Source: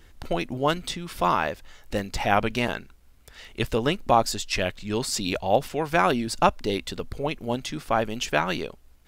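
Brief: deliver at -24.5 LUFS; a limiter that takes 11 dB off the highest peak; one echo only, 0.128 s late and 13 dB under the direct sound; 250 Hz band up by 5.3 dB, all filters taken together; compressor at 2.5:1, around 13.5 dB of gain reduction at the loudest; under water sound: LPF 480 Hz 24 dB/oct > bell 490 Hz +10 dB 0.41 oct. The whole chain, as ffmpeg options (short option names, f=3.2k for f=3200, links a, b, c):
-af "equalizer=f=250:t=o:g=6,acompressor=threshold=-34dB:ratio=2.5,alimiter=level_in=2.5dB:limit=-24dB:level=0:latency=1,volume=-2.5dB,lowpass=f=480:w=0.5412,lowpass=f=480:w=1.3066,equalizer=f=490:t=o:w=0.41:g=10,aecho=1:1:128:0.224,volume=14dB"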